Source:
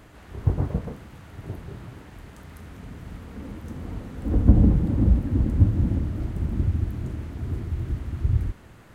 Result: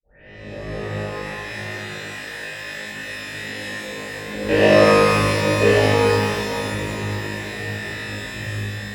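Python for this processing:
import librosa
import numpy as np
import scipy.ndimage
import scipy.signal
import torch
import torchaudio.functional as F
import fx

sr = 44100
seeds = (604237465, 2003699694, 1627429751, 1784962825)

p1 = fx.tape_start_head(x, sr, length_s=0.99)
p2 = fx.graphic_eq(p1, sr, hz=(125, 500, 1000, 2000), db=(8, -5, 11, 7))
p3 = fx.rider(p2, sr, range_db=4, speed_s=2.0)
p4 = p2 + F.gain(torch.from_numpy(p3), 1.5).numpy()
p5 = fx.high_shelf(p4, sr, hz=2400.0, db=12.0)
p6 = (np.mod(10.0 ** (-1.5 / 20.0) * p5 + 1.0, 2.0) - 1.0) / 10.0 ** (-1.5 / 20.0)
p7 = fx.vowel_filter(p6, sr, vowel='e')
p8 = fx.room_flutter(p7, sr, wall_m=3.3, rt60_s=1.1)
p9 = fx.rev_shimmer(p8, sr, seeds[0], rt60_s=3.2, semitones=12, shimmer_db=-8, drr_db=-11.5)
y = F.gain(torch.from_numpy(p9), -6.5).numpy()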